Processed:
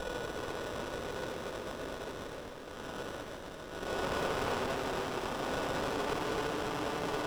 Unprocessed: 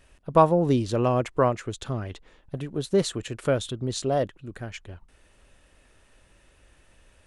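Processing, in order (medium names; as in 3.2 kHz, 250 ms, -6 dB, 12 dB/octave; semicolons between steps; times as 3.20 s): spectral levelling over time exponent 0.4; Paulstretch 22×, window 0.05 s, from 2.35 s; bass shelf 240 Hz +8 dB; sample-and-hold 30×; static phaser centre 320 Hz, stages 4; hard clipper -26 dBFS, distortion -5 dB; three-band isolator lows -20 dB, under 510 Hz, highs -14 dB, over 5.5 kHz; on a send: echo whose repeats swap between lows and highs 128 ms, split 930 Hz, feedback 85%, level -5 dB; on the sum: sliding maximum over 17 samples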